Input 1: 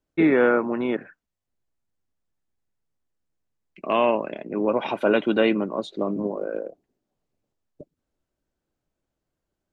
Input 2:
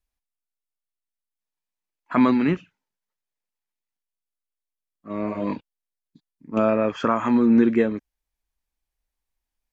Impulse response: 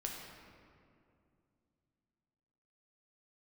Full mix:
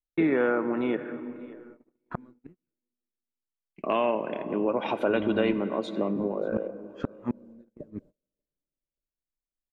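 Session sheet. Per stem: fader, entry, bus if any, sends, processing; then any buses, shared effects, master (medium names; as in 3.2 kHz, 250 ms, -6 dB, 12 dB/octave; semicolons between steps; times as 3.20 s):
-0.5 dB, 0.00 s, send -9.5 dB, echo send -23 dB, treble shelf 2.7 kHz -3 dB
-7.5 dB, 0.00 s, no send, no echo send, tilt EQ -4 dB/octave; inverted gate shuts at -6 dBFS, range -35 dB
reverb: on, RT60 2.5 s, pre-delay 7 ms
echo: feedback delay 585 ms, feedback 21%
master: gate -48 dBFS, range -26 dB; compression 2:1, threshold -26 dBFS, peak gain reduction 8 dB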